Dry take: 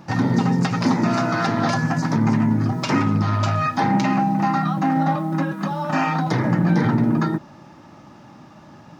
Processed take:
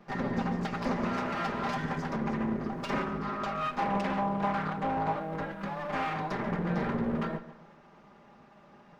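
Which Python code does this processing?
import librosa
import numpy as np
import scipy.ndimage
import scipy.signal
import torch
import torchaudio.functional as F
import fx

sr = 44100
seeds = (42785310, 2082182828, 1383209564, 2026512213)

y = fx.lower_of_two(x, sr, delay_ms=5.0)
y = fx.bass_treble(y, sr, bass_db=-5, treble_db=-11)
y = fx.echo_filtered(y, sr, ms=141, feedback_pct=39, hz=4700.0, wet_db=-14.5)
y = fx.doppler_dist(y, sr, depth_ms=0.49, at=(3.78, 5.17))
y = y * librosa.db_to_amplitude(-8.5)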